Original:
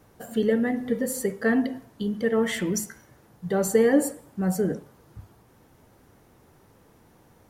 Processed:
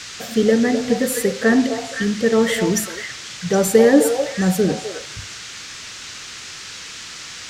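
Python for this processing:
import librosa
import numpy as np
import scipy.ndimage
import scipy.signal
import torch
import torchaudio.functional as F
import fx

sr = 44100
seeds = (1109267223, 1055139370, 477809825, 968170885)

y = fx.echo_stepped(x, sr, ms=256, hz=690.0, octaves=1.4, feedback_pct=70, wet_db=-3.0)
y = fx.dmg_noise_band(y, sr, seeds[0], low_hz=1200.0, high_hz=7000.0, level_db=-42.0)
y = F.gain(torch.from_numpy(y), 7.0).numpy()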